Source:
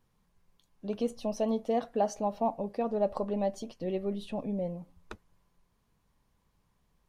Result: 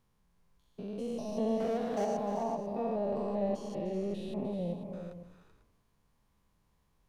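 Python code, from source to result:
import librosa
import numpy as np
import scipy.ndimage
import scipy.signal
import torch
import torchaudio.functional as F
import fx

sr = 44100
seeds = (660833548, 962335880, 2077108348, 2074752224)

y = fx.spec_steps(x, sr, hold_ms=200)
y = fx.power_curve(y, sr, exponent=0.7, at=(1.6, 2.05))
y = fx.echo_multitap(y, sr, ms=(302, 384, 495), db=(-11.0, -9.0, -13.5))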